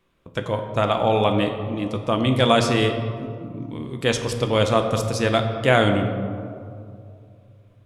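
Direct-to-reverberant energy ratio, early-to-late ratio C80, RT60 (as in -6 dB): 5.0 dB, 8.0 dB, 2.5 s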